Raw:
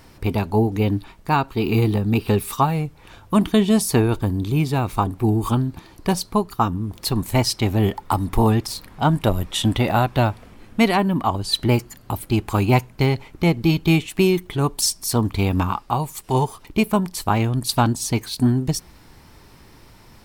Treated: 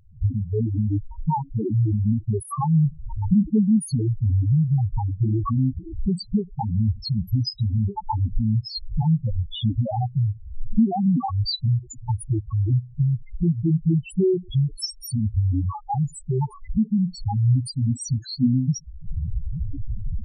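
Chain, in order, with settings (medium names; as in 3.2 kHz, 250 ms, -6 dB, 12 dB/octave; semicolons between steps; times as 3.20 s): recorder AGC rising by 66 dB/s; loudest bins only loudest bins 2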